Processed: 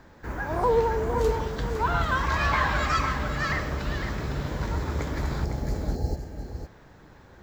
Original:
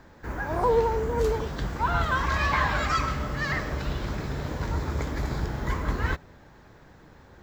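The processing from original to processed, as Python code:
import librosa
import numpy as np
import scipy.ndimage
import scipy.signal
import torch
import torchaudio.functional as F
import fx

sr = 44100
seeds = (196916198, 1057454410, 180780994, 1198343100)

p1 = fx.spec_repair(x, sr, seeds[0], start_s=5.47, length_s=0.92, low_hz=880.0, high_hz=4000.0, source='after')
y = p1 + fx.echo_single(p1, sr, ms=506, db=-8.5, dry=0)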